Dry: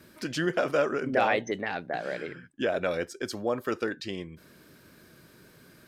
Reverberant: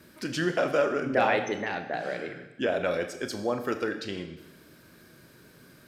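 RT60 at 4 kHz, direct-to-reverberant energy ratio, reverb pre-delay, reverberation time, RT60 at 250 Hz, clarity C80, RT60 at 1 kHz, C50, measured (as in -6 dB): 1.0 s, 7.0 dB, 27 ms, 1.0 s, 1.0 s, 11.0 dB, 1.0 s, 10.0 dB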